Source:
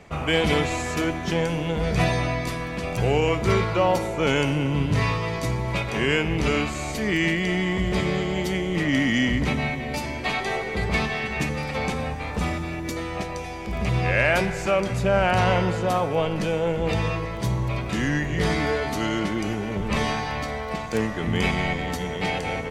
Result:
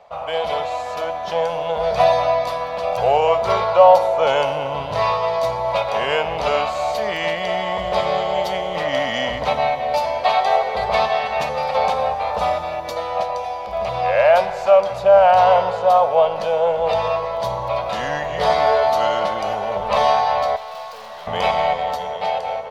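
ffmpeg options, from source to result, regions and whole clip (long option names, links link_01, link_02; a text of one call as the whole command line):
ffmpeg -i in.wav -filter_complex "[0:a]asettb=1/sr,asplit=3[link_01][link_02][link_03];[link_01]atrim=end=20.564[link_04];[link_02]atrim=start=20.56:end=21.27,asetpts=PTS-STARTPTS,afade=type=in:duration=0.004:curve=qsin,afade=type=out:start_time=0.706:duration=0.004:curve=qsin,tiltshelf=frequency=1200:gain=-6,asplit=2[link_05][link_06];[link_06]adelay=41,volume=-12.5dB[link_07];[link_05][link_07]amix=inputs=2:normalize=0,atrim=end_sample=31311,aeval=exprs='(tanh(100*val(0)+0.65)-tanh(0.65))/100':channel_layout=same[link_08];[link_03]atrim=start=21.266[link_09];[link_04][link_08]acrossfade=duration=0.004:curve1=hsin:curve2=qsin[link_10];[link_10][link_09]acrossfade=duration=0.004:curve1=qsin:curve2=hsin,lowshelf=frequency=470:width_type=q:width=3:gain=-10.5,dynaudnorm=framelen=370:gausssize=7:maxgain=9dB,equalizer=frequency=500:width_type=o:width=1:gain=8,equalizer=frequency=1000:width_type=o:width=1:gain=7,equalizer=frequency=2000:width_type=o:width=1:gain=-6,equalizer=frequency=4000:width_type=o:width=1:gain=7,equalizer=frequency=8000:width_type=o:width=1:gain=-9,volume=-6.5dB" out.wav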